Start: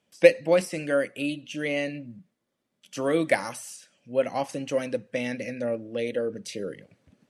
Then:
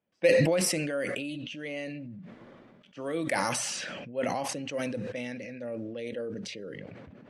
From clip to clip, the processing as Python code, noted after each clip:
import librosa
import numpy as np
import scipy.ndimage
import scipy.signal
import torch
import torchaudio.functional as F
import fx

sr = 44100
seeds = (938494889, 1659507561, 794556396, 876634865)

y = fx.env_lowpass(x, sr, base_hz=1900.0, full_db=-23.0)
y = fx.sustainer(y, sr, db_per_s=22.0)
y = F.gain(torch.from_numpy(y), -9.0).numpy()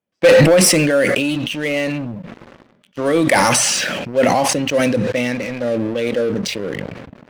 y = fx.leveller(x, sr, passes=3)
y = F.gain(torch.from_numpy(y), 5.5).numpy()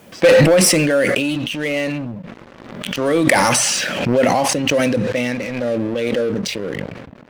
y = fx.pre_swell(x, sr, db_per_s=50.0)
y = F.gain(torch.from_numpy(y), -1.0).numpy()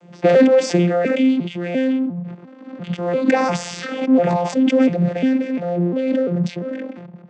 y = fx.vocoder_arp(x, sr, chord='bare fifth', root=53, every_ms=348)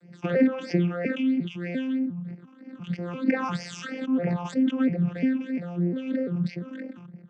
y = fx.env_lowpass_down(x, sr, base_hz=2700.0, full_db=-12.0)
y = fx.phaser_stages(y, sr, stages=8, low_hz=540.0, high_hz=1100.0, hz=3.1, feedback_pct=40)
y = F.gain(torch.from_numpy(y), -5.5).numpy()